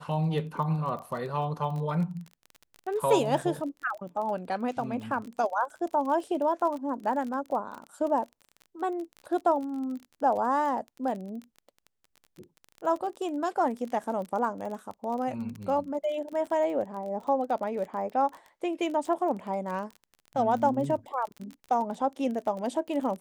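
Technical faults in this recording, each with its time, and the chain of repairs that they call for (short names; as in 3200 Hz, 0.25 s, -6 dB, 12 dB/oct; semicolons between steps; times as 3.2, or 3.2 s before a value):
crackle 28/s -35 dBFS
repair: de-click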